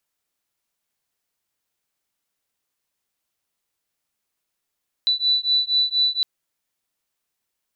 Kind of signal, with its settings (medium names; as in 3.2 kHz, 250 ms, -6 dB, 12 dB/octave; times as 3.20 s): beating tones 3.97 kHz, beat 4.2 Hz, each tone -20.5 dBFS 1.16 s